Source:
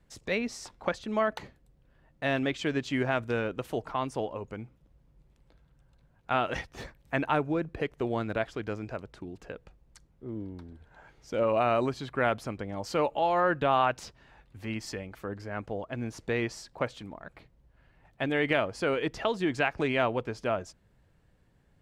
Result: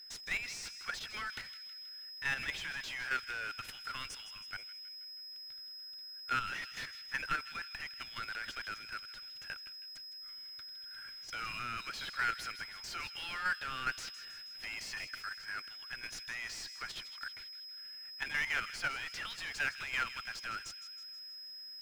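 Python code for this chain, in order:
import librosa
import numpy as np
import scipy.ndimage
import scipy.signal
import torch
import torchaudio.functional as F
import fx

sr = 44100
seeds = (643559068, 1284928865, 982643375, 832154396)

p1 = x + 10.0 ** (-54.0 / 20.0) * np.sin(2.0 * np.pi * 5100.0 * np.arange(len(x)) / sr)
p2 = scipy.signal.sosfilt(scipy.signal.cheby1(5, 1.0, 1400.0, 'highpass', fs=sr, output='sos'), p1)
p3 = fx.high_shelf(p2, sr, hz=2000.0, db=4.0)
p4 = fx.level_steps(p3, sr, step_db=16)
p5 = fx.power_curve(p4, sr, exponent=0.5)
p6 = fx.tilt_eq(p5, sr, slope=-3.0)
p7 = p6 + fx.echo_wet_highpass(p6, sr, ms=160, feedback_pct=54, hz=2300.0, wet_db=-11, dry=0)
y = p7 * librosa.db_to_amplitude(-3.5)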